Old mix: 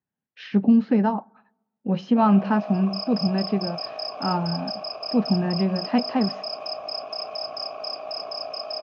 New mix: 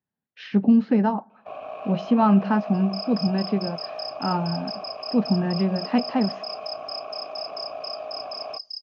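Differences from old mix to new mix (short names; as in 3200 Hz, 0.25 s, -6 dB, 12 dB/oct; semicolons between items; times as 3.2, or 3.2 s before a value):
first sound: entry -0.70 s; second sound: send off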